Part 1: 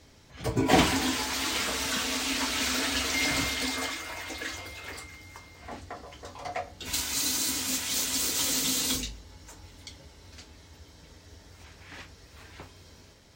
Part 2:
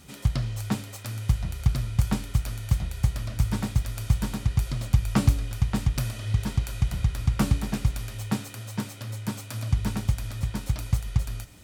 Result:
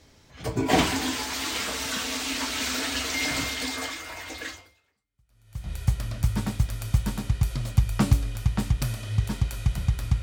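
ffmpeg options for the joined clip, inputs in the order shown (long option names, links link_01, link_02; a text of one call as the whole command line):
ffmpeg -i cue0.wav -i cue1.wav -filter_complex "[0:a]apad=whole_dur=10.22,atrim=end=10.22,atrim=end=5.73,asetpts=PTS-STARTPTS[link_01];[1:a]atrim=start=1.65:end=7.38,asetpts=PTS-STARTPTS[link_02];[link_01][link_02]acrossfade=duration=1.24:curve1=exp:curve2=exp" out.wav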